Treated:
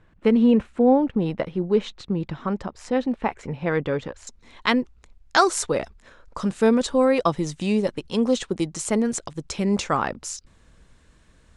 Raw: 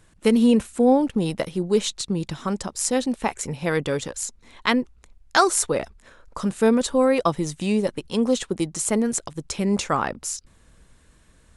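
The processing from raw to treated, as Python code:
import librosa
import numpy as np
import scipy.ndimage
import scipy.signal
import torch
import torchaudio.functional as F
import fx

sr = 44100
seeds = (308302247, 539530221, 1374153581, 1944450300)

y = fx.lowpass(x, sr, hz=fx.steps((0.0, 2300.0), (4.27, 7000.0)), slope=12)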